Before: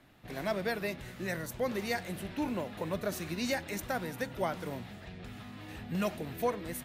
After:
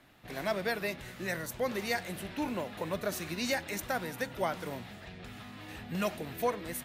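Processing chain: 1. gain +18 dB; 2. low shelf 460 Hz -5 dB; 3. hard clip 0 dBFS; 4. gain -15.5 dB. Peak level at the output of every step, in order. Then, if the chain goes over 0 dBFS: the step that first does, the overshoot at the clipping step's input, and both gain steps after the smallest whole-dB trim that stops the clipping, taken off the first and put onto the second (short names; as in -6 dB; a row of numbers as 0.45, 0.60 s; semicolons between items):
-2.5, -3.5, -3.5, -19.0 dBFS; no overload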